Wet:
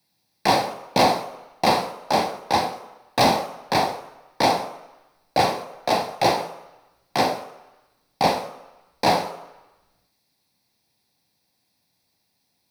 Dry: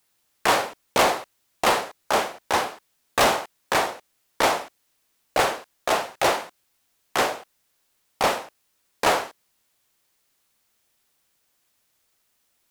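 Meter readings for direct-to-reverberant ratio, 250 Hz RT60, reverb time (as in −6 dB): 8.5 dB, 0.80 s, 1.0 s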